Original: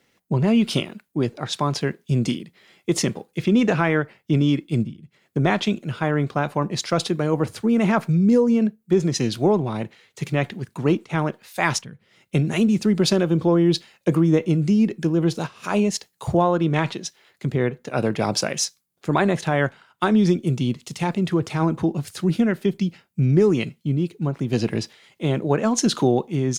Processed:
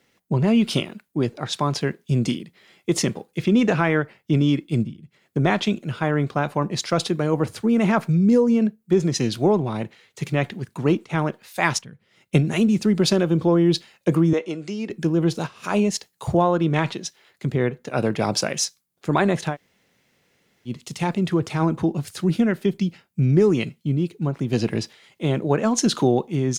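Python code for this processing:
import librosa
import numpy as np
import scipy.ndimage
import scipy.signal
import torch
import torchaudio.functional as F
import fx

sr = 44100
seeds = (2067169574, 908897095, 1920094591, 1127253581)

y = fx.transient(x, sr, attack_db=4, sustain_db=-3, at=(11.6, 12.44))
y = fx.bandpass_edges(y, sr, low_hz=430.0, high_hz=7600.0, at=(14.33, 14.9))
y = fx.edit(y, sr, fx.room_tone_fill(start_s=19.52, length_s=1.18, crossfade_s=0.1), tone=tone)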